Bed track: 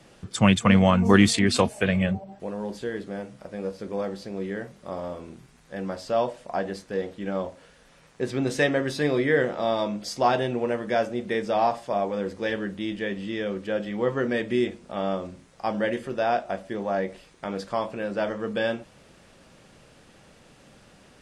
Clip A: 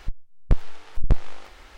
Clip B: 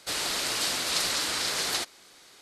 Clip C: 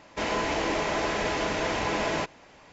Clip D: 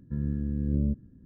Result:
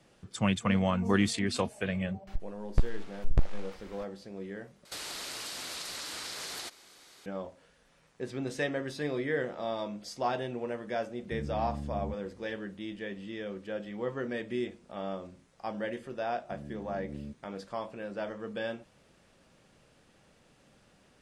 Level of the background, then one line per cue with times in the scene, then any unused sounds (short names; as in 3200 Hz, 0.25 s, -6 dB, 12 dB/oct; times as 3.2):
bed track -9.5 dB
2.27 add A -5.5 dB
4.85 replace with B -2.5 dB + compressor 12:1, threshold -33 dBFS
11.2 add D -5.5 dB + limiter -24.5 dBFS
16.39 add D -7 dB + HPF 360 Hz 6 dB/oct
not used: C